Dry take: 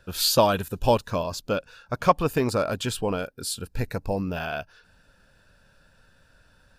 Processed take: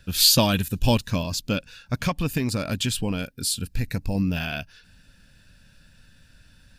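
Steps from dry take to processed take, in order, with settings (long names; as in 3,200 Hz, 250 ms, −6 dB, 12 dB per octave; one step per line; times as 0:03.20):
flat-topped bell 730 Hz −11.5 dB 2.3 octaves
0:01.99–0:04.15: downward compressor, threshold −27 dBFS, peak gain reduction 6.5 dB
level +6.5 dB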